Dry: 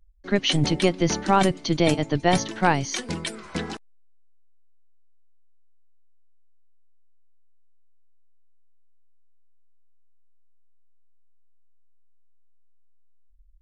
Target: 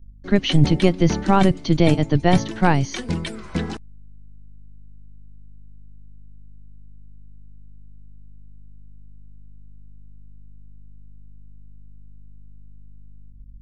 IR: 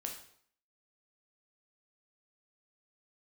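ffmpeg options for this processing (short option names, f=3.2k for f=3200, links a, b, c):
-filter_complex "[0:a]aeval=exprs='val(0)+0.00158*(sin(2*PI*50*n/s)+sin(2*PI*2*50*n/s)/2+sin(2*PI*3*50*n/s)/3+sin(2*PI*4*50*n/s)/4+sin(2*PI*5*50*n/s)/5)':c=same,lowshelf=f=220:g=11.5,acrossover=split=4400[a][b];[b]acompressor=threshold=-37dB:ratio=4:attack=1:release=60[c];[a][c]amix=inputs=2:normalize=0"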